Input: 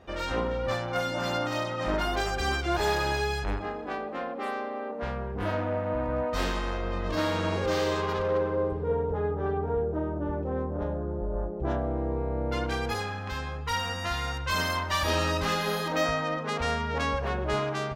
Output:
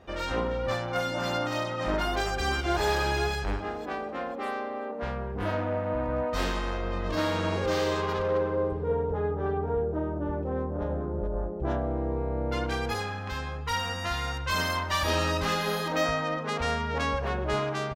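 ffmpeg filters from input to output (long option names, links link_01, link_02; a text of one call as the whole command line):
ffmpeg -i in.wav -filter_complex "[0:a]asplit=2[link_01][link_02];[link_02]afade=type=in:start_time=2.05:duration=0.01,afade=type=out:start_time=2.85:duration=0.01,aecho=0:1:500|1000|1500|2000:0.298538|0.104488|0.0365709|0.0127998[link_03];[link_01][link_03]amix=inputs=2:normalize=0,asplit=2[link_04][link_05];[link_05]afade=type=in:start_time=10.44:duration=0.01,afade=type=out:start_time=10.84:duration=0.01,aecho=0:1:430|860|1290:0.354813|0.106444|0.0319332[link_06];[link_04][link_06]amix=inputs=2:normalize=0" out.wav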